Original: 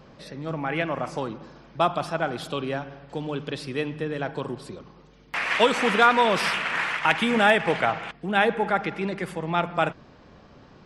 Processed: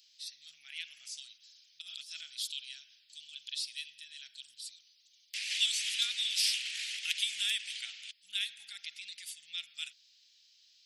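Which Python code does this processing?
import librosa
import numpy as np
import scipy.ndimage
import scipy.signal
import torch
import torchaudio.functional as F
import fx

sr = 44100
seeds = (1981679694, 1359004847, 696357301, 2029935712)

y = scipy.signal.sosfilt(scipy.signal.cheby2(4, 60, 1100.0, 'highpass', fs=sr, output='sos'), x)
y = fx.over_compress(y, sr, threshold_db=-54.0, ratio=-1.0, at=(1.8, 2.2), fade=0.02)
y = y * librosa.db_to_amplitude(5.0)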